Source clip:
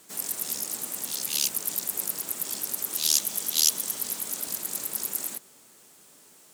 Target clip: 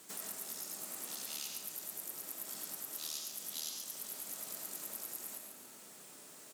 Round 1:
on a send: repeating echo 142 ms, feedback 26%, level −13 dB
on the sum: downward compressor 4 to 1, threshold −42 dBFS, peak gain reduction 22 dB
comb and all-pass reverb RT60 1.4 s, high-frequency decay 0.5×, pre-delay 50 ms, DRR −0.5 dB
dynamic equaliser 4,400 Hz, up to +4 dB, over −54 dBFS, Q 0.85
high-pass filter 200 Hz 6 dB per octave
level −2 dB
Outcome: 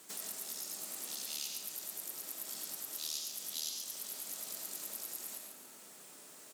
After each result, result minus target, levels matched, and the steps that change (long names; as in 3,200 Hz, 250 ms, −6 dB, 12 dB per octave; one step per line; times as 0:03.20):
125 Hz band −4.5 dB; 1,000 Hz band −3.0 dB
change: high-pass filter 89 Hz 6 dB per octave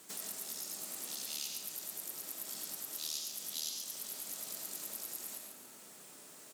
1,000 Hz band −2.5 dB
change: dynamic equaliser 1,300 Hz, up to +4 dB, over −54 dBFS, Q 0.85